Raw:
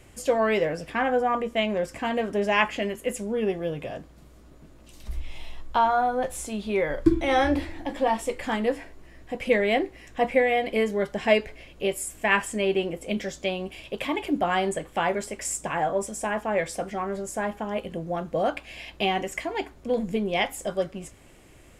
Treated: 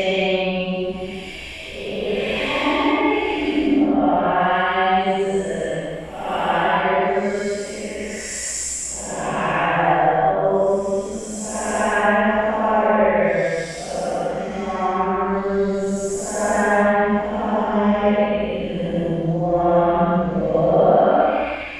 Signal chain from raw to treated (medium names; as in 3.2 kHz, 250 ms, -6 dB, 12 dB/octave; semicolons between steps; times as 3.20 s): recorder AGC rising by 6.5 dB/s; low-pass that closes with the level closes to 2.2 kHz, closed at -17.5 dBFS; Paulstretch 4.2×, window 0.25 s, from 13.43 s; trim +5.5 dB